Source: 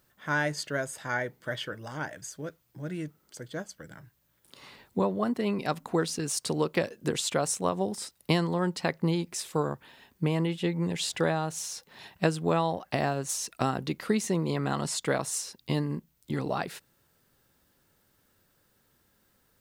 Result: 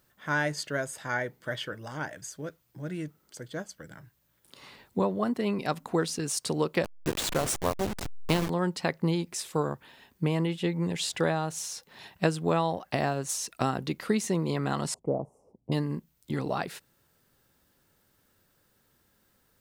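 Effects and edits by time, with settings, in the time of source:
6.84–8.50 s: send-on-delta sampling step -26.5 dBFS
14.94–15.72 s: inverse Chebyshev low-pass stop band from 1.5 kHz

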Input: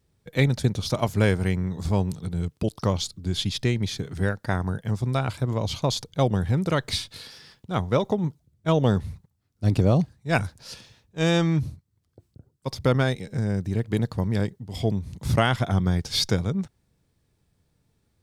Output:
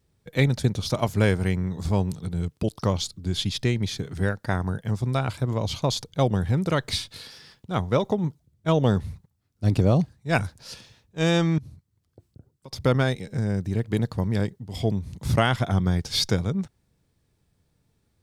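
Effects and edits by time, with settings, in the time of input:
11.58–12.73 s: compression 8:1, threshold -39 dBFS

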